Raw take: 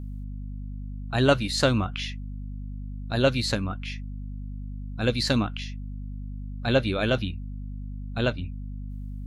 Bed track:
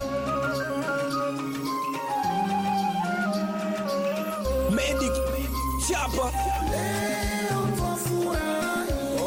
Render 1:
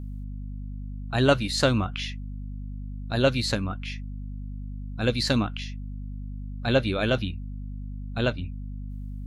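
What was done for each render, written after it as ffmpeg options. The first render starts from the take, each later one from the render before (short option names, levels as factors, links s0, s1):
-af anull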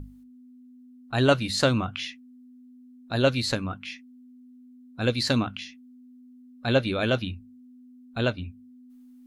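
-af "bandreject=f=50:t=h:w=6,bandreject=f=100:t=h:w=6,bandreject=f=150:t=h:w=6,bandreject=f=200:t=h:w=6"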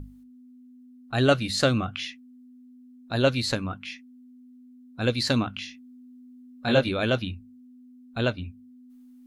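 -filter_complex "[0:a]asettb=1/sr,asplit=3[s0][s1][s2];[s0]atrim=end=1.144[s3];[s1]atrim=start=1.14:end=2.09,asetpts=PTS-STARTPTS,afade=t=in:d=0.004:c=qsin,afade=t=out:st=0.946:d=0.004:c=qsin,asuperstop=centerf=950:order=4:qfactor=5.8[s4];[s2]atrim=start=2.086[s5];[s3][s4]acrossfade=d=0.004:c1=hsin:c2=qsin[s6];[s6][s5]acrossfade=d=0.004:c1=qsin:c2=hsin,asettb=1/sr,asplit=3[s7][s8][s9];[s7]atrim=end=5.554[s10];[s8]atrim=start=5.55:end=6.89,asetpts=PTS-STARTPTS,afade=t=in:d=0.004:c=qsin,afade=t=out:st=1.336:d=0.004:c=qsin,asplit=2[s11][s12];[s12]adelay=21,volume=0.75[s13];[s11][s13]amix=inputs=2:normalize=0,atrim=end_sample=59094[s14];[s9]atrim=start=6.886[s15];[s10][s14]acrossfade=d=0.004:c1=hsin:c2=qsin[s16];[s16][s15]acrossfade=d=0.004:c1=qsin:c2=hsin"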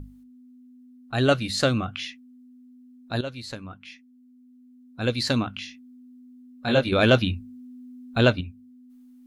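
-filter_complex "[0:a]asettb=1/sr,asplit=3[s0][s1][s2];[s0]atrim=end=6.924[s3];[s1]atrim=start=6.92:end=8.41,asetpts=PTS-STARTPTS,afade=t=in:d=0.004:c=qsin,afade=t=out:st=1.486:d=0.004:c=qsin,acontrast=85[s4];[s2]atrim=start=8.406[s5];[s3][s4]acrossfade=d=0.004:c1=hsin:c2=qsin[s6];[s6][s5]acrossfade=d=0.004:c1=qsin:c2=hsin,asplit=2[s7][s8];[s7]atrim=end=3.21,asetpts=PTS-STARTPTS,afade=t=out:st=3.206:d=0.004:c=hsin:silence=0.211349[s9];[s8]atrim=start=3.21,asetpts=PTS-STARTPTS,afade=t=in:d=1.98:silence=0.211349[s10];[s9][s10]concat=n=2:v=0:a=1"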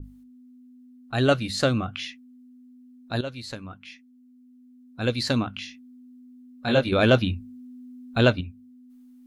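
-af "adynamicequalizer=threshold=0.02:dfrequency=1500:dqfactor=0.7:tfrequency=1500:tqfactor=0.7:attack=5:release=100:ratio=0.375:range=2:mode=cutabove:tftype=highshelf"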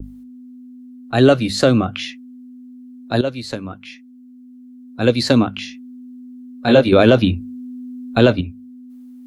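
-filter_complex "[0:a]acrossover=split=230|660|1800[s0][s1][s2][s3];[s1]acontrast=89[s4];[s0][s4][s2][s3]amix=inputs=4:normalize=0,alimiter=level_in=2.11:limit=0.891:release=50:level=0:latency=1"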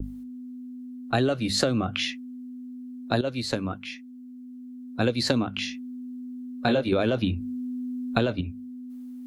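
-af "acompressor=threshold=0.1:ratio=10"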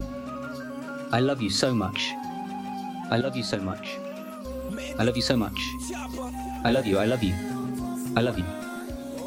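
-filter_complex "[1:a]volume=0.316[s0];[0:a][s0]amix=inputs=2:normalize=0"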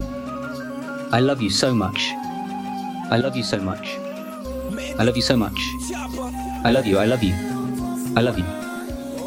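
-af "volume=1.88,alimiter=limit=0.708:level=0:latency=1"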